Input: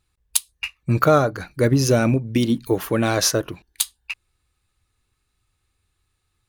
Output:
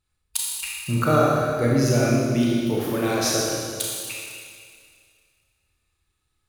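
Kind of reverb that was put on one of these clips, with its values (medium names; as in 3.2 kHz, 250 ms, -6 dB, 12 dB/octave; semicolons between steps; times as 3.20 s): Schroeder reverb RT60 2.1 s, combs from 26 ms, DRR -4.5 dB; trim -7.5 dB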